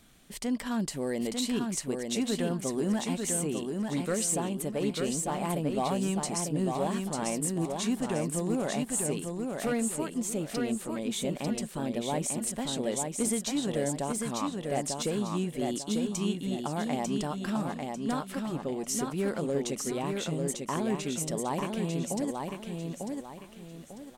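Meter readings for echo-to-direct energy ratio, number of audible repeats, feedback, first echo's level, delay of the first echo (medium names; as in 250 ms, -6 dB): -3.5 dB, 4, 34%, -4.0 dB, 896 ms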